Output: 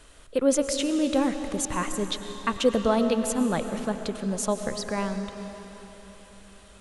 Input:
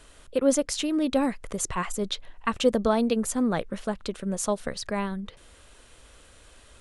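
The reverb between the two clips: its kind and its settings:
comb and all-pass reverb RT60 4 s, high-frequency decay 0.9×, pre-delay 70 ms, DRR 7.5 dB

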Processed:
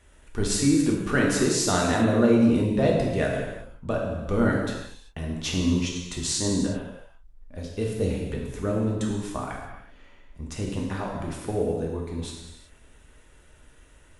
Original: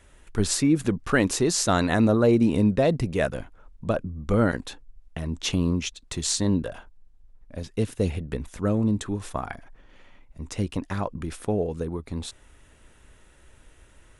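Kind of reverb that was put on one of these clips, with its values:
reverb whose tail is shaped and stops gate 410 ms falling, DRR −2 dB
level −4 dB

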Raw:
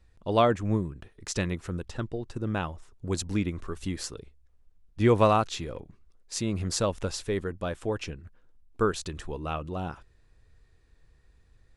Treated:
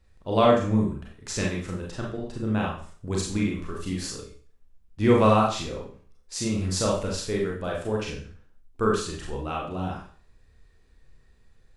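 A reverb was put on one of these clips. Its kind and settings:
four-comb reverb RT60 0.44 s, combs from 29 ms, DRR −2.5 dB
level −1.5 dB

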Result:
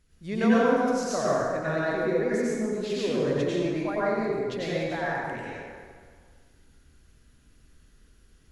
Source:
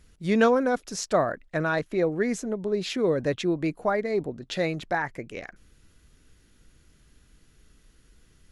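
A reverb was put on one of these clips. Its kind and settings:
dense smooth reverb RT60 1.8 s, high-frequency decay 0.7×, pre-delay 80 ms, DRR −8 dB
level −9.5 dB

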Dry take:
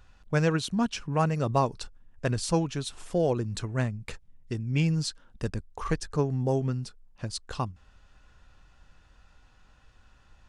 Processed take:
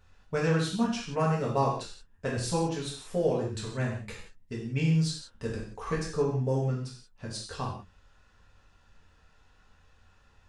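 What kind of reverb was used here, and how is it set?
reverb whose tail is shaped and stops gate 210 ms falling, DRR −5.5 dB
level −7.5 dB

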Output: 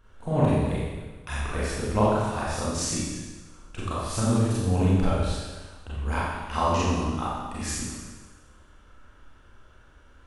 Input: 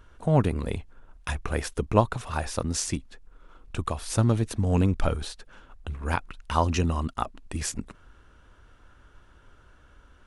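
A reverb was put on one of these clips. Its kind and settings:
four-comb reverb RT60 1.3 s, combs from 29 ms, DRR −8.5 dB
level −7.5 dB

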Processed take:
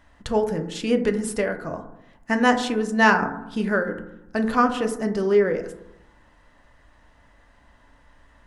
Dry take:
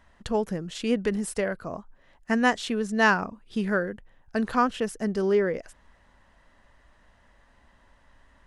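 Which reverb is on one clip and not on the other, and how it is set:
feedback delay network reverb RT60 0.83 s, low-frequency decay 1.35×, high-frequency decay 0.3×, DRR 5 dB
level +2.5 dB

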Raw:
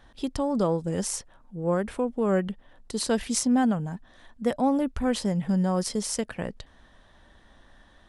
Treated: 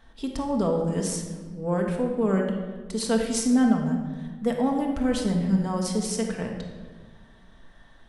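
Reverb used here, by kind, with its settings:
rectangular room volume 1,300 cubic metres, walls mixed, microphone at 1.6 metres
level −2.5 dB

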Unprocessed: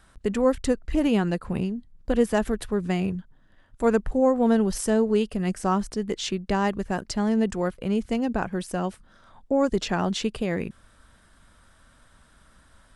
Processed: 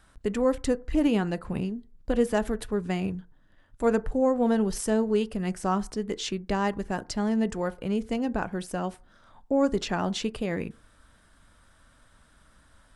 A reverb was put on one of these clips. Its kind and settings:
feedback delay network reverb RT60 0.39 s, low-frequency decay 0.85×, high-frequency decay 0.35×, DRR 15 dB
level −2.5 dB

